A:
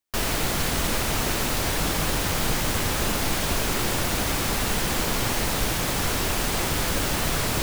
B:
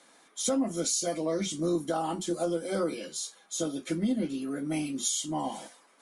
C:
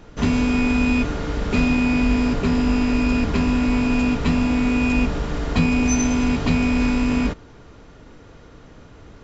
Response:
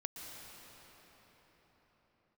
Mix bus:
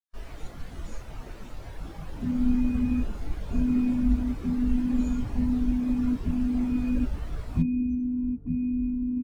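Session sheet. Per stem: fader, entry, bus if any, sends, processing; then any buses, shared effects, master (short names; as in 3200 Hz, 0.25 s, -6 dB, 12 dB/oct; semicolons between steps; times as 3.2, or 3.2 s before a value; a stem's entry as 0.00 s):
-1.5 dB, 0.00 s, no send, low shelf 420 Hz -4.5 dB
-1.5 dB, 0.00 s, no send, passive tone stack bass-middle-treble 5-5-5; backwards sustainer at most 41 dB/s
-11.0 dB, 2.00 s, no send, LPF 3000 Hz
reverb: off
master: spectral expander 2.5:1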